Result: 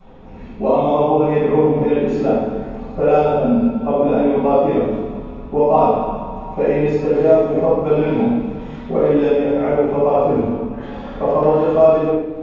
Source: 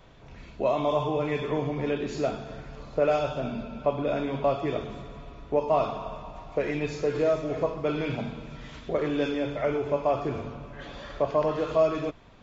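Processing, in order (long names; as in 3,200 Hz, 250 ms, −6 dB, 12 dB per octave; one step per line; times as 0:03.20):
hollow resonant body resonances 220/430/780 Hz, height 11 dB, ringing for 25 ms
convolution reverb RT60 1.0 s, pre-delay 4 ms, DRR −10.5 dB
level −11.5 dB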